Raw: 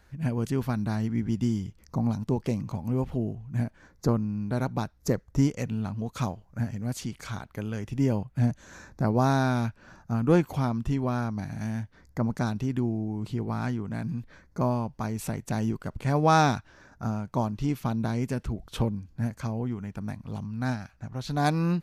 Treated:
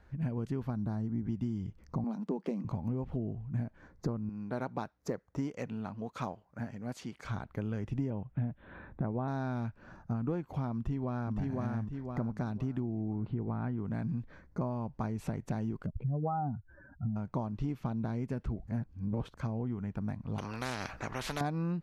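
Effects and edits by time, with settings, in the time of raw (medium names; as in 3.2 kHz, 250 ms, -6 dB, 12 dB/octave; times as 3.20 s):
0.70–1.25 s: peaking EQ 2.5 kHz -11 dB 1.2 oct
2.04–2.65 s: elliptic high-pass 180 Hz
4.29–7.25 s: high-pass 450 Hz 6 dB/octave
8.10–9.28 s: steep low-pass 3.7 kHz 72 dB/octave
10.76–11.37 s: echo throw 510 ms, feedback 35%, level -3 dB
13.13–13.78 s: distance through air 380 m
15.86–17.16 s: spectral contrast enhancement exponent 2.6
18.67–19.35 s: reverse
20.38–21.41 s: spectrum-flattening compressor 4:1
whole clip: low-pass 1.4 kHz 6 dB/octave; compression 10:1, threshold -30 dBFS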